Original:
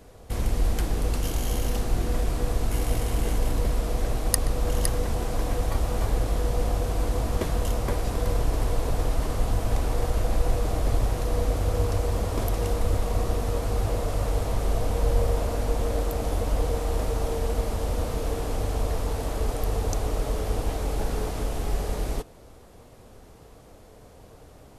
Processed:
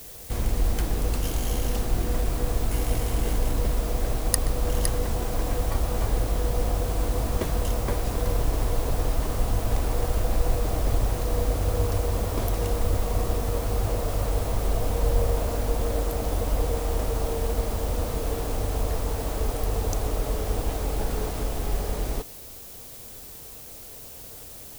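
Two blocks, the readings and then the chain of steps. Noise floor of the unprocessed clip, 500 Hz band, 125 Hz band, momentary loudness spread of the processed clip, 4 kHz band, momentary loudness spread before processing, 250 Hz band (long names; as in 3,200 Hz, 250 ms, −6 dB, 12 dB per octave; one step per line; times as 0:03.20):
−49 dBFS, 0.0 dB, 0.0 dB, 6 LU, +0.5 dB, 3 LU, 0.0 dB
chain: background noise blue −43 dBFS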